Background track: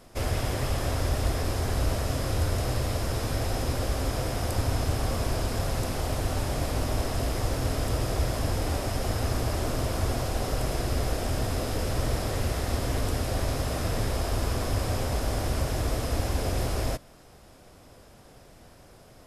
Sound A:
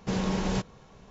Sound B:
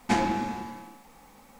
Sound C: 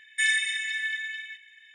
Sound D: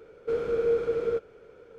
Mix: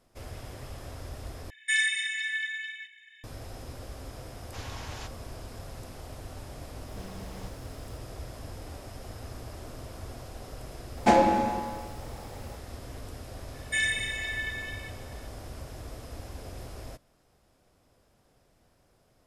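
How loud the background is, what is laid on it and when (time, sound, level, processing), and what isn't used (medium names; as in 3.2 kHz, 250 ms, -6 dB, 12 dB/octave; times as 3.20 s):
background track -14 dB
1.50 s: replace with C -1.5 dB
4.46 s: add A -6 dB + high-pass 970 Hz
6.88 s: add A -17 dB + added noise pink -46 dBFS
10.97 s: add B + peaking EQ 590 Hz +14 dB 0.79 oct
13.54 s: add C -3.5 dB
not used: D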